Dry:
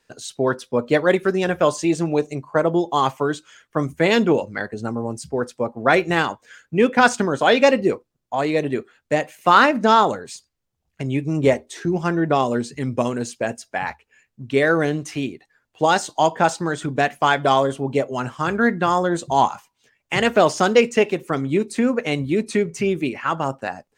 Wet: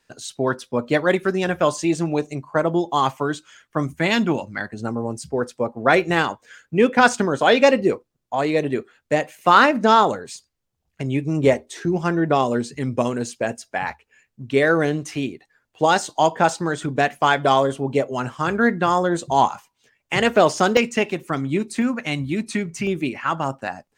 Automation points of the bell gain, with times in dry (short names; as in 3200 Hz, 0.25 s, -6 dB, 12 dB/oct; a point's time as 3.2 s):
bell 460 Hz 0.52 oct
-4 dB
from 3.96 s -11.5 dB
from 4.79 s +0.5 dB
from 20.77 s -7.5 dB
from 21.82 s -15 dB
from 22.87 s -5 dB